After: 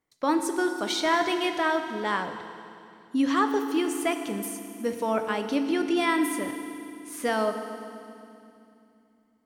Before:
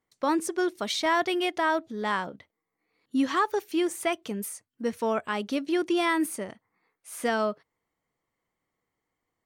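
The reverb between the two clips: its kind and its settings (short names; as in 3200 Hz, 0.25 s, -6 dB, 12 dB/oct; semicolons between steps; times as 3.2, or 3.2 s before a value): FDN reverb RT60 2.6 s, low-frequency decay 1.5×, high-frequency decay 1×, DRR 6 dB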